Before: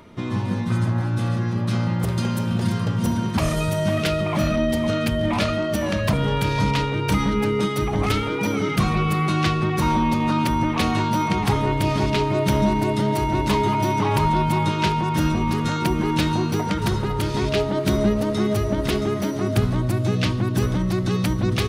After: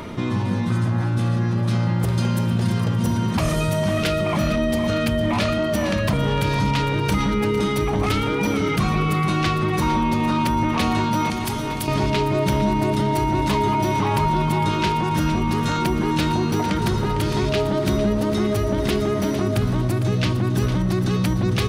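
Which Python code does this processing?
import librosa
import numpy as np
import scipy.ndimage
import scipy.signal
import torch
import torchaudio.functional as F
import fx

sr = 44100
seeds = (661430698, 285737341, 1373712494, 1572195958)

y = fx.pre_emphasis(x, sr, coefficient=0.8, at=(11.3, 11.88))
y = fx.echo_feedback(y, sr, ms=454, feedback_pct=45, wet_db=-13.0)
y = fx.env_flatten(y, sr, amount_pct=50)
y = F.gain(torch.from_numpy(y), -2.5).numpy()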